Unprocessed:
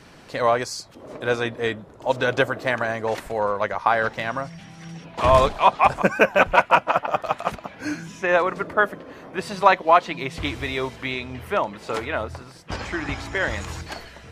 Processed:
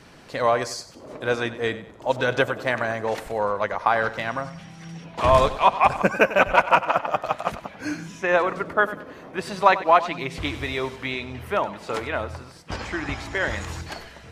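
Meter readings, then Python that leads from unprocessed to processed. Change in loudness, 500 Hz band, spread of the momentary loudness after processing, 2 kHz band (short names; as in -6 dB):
-1.0 dB, -1.0 dB, 16 LU, -1.0 dB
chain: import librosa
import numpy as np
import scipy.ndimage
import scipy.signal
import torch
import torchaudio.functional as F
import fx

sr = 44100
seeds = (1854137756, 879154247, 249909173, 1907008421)

y = fx.echo_feedback(x, sr, ms=96, feedback_pct=34, wet_db=-15.0)
y = y * 10.0 ** (-1.0 / 20.0)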